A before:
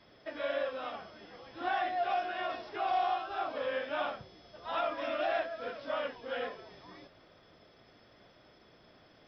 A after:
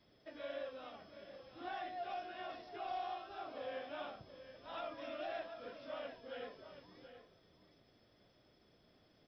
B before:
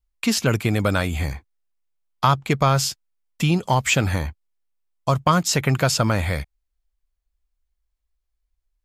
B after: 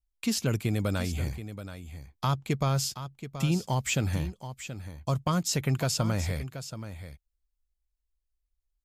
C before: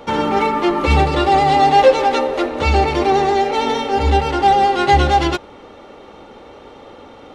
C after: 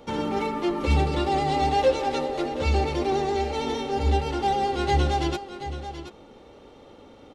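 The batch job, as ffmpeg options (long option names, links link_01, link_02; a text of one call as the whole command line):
ffmpeg -i in.wav -af "equalizer=frequency=1300:width_type=o:width=2.7:gain=-7.5,aecho=1:1:728:0.266,volume=-6dB" out.wav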